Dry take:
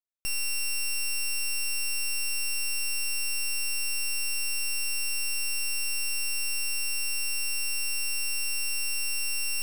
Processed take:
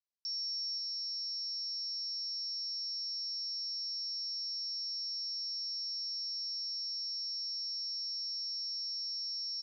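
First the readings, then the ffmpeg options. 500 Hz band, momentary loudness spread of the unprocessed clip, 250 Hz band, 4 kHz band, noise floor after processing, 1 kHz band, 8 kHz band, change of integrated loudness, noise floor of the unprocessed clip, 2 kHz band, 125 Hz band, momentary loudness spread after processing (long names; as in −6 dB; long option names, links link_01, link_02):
below −40 dB, 0 LU, below −40 dB, −1.5 dB, −39 dBFS, below −40 dB, −21.5 dB, −7.0 dB, −28 dBFS, below −40 dB, can't be measured, 0 LU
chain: -af "asuperpass=centerf=4900:order=12:qfactor=2.2,aecho=1:1:528:0.501"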